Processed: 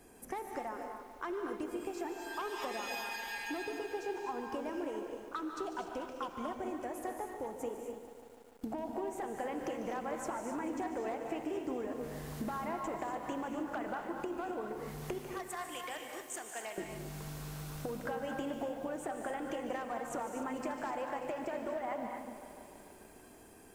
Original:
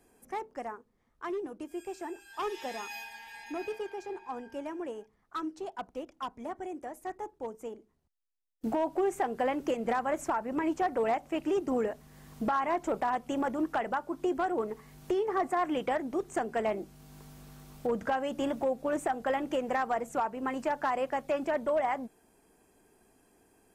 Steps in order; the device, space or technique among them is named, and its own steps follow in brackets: 15.18–16.78 pre-emphasis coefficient 0.97; serial compression, peaks first (compressor, threshold -39 dBFS, peak gain reduction 13.5 dB; compressor 2:1, threshold -47 dBFS, peak gain reduction 6.5 dB); non-linear reverb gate 0.28 s rising, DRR 3.5 dB; lo-fi delay 0.147 s, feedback 80%, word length 11-bit, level -12 dB; gain +6.5 dB

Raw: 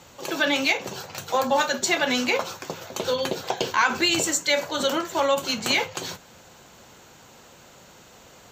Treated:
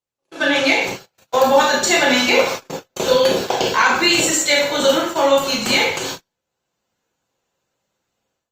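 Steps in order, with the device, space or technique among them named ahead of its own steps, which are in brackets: speakerphone in a meeting room (reverb RT60 0.60 s, pre-delay 21 ms, DRR -1.5 dB; AGC gain up to 16 dB; gate -22 dBFS, range -43 dB; gain -1.5 dB; Opus 32 kbps 48000 Hz)

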